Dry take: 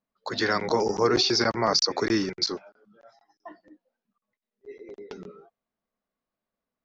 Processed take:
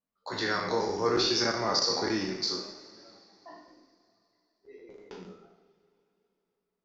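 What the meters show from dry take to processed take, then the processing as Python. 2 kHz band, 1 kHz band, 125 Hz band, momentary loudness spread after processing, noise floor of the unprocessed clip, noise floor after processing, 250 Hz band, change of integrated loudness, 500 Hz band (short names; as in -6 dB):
-4.0 dB, -4.0 dB, -5.0 dB, 22 LU, under -85 dBFS, -83 dBFS, -5.0 dB, -4.0 dB, -4.5 dB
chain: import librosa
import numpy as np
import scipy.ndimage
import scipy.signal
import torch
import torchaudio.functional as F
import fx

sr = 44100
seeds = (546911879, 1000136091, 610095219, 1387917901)

y = fx.spec_trails(x, sr, decay_s=0.63)
y = fx.rev_double_slope(y, sr, seeds[0], early_s=0.69, late_s=3.5, knee_db=-16, drr_db=4.5)
y = fx.vibrato(y, sr, rate_hz=0.84, depth_cents=23.0)
y = F.gain(torch.from_numpy(y), -8.0).numpy()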